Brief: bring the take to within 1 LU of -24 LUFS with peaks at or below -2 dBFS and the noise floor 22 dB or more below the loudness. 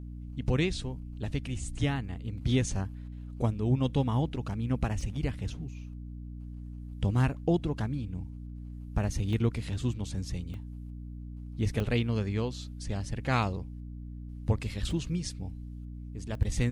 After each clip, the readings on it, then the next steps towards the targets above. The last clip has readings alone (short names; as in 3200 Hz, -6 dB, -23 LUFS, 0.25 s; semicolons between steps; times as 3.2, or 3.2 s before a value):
dropouts 6; longest dropout 1.1 ms; hum 60 Hz; harmonics up to 300 Hz; hum level -39 dBFS; loudness -32.0 LUFS; peak -13.5 dBFS; loudness target -24.0 LUFS
-> interpolate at 5.01/9.33/10.54/11.8/14.91/16.35, 1.1 ms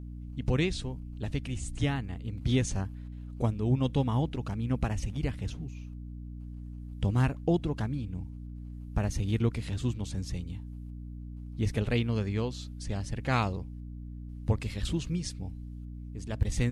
dropouts 0; hum 60 Hz; harmonics up to 300 Hz; hum level -39 dBFS
-> de-hum 60 Hz, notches 5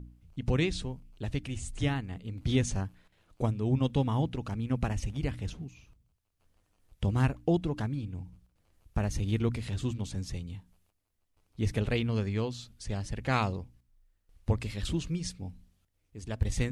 hum none; loudness -32.5 LUFS; peak -14.0 dBFS; loudness target -24.0 LUFS
-> gain +8.5 dB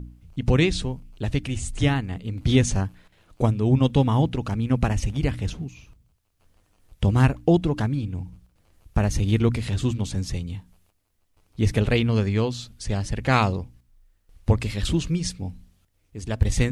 loudness -24.0 LUFS; peak -5.5 dBFS; noise floor -67 dBFS